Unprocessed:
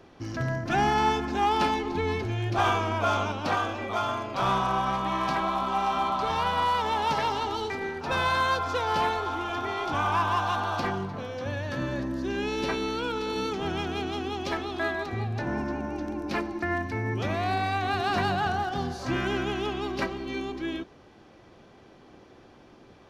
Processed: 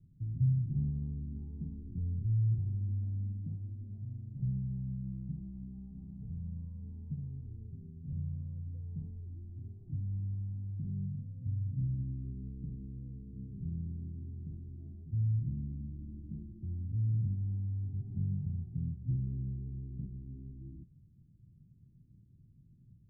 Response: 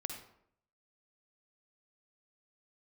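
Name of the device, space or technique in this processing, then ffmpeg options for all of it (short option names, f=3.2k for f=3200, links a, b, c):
the neighbour's flat through the wall: -af "lowpass=f=160:w=0.5412,lowpass=f=160:w=1.3066,equalizer=f=140:t=o:w=0.92:g=7,volume=-2.5dB"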